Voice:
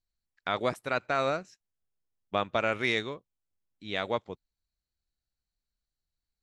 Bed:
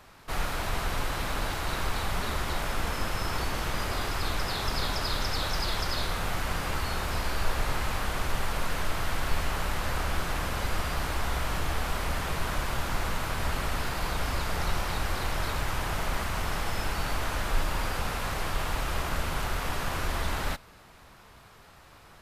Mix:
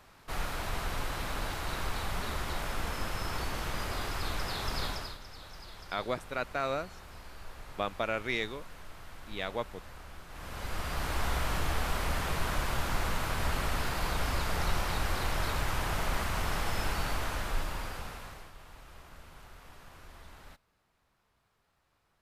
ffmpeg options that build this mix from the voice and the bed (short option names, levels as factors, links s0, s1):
-filter_complex "[0:a]adelay=5450,volume=0.596[s0];[1:a]volume=4.22,afade=t=out:st=4.85:d=0.33:silence=0.199526,afade=t=in:st=10.29:d=0.94:silence=0.141254,afade=t=out:st=16.9:d=1.62:silence=0.1[s1];[s0][s1]amix=inputs=2:normalize=0"